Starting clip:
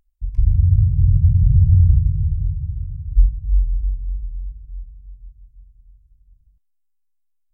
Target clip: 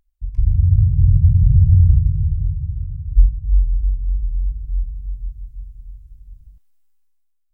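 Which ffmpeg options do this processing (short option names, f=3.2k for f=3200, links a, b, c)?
-af "dynaudnorm=f=210:g=7:m=13.5dB,volume=-1dB"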